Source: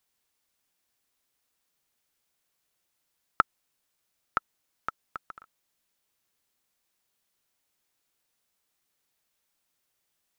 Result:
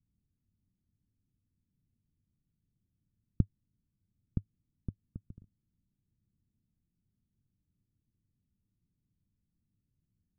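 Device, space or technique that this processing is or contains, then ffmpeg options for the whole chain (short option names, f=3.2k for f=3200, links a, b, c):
the neighbour's flat through the wall: -af "lowpass=f=210:w=0.5412,lowpass=f=210:w=1.3066,equalizer=f=100:t=o:w=0.46:g=5.5,volume=16.5dB"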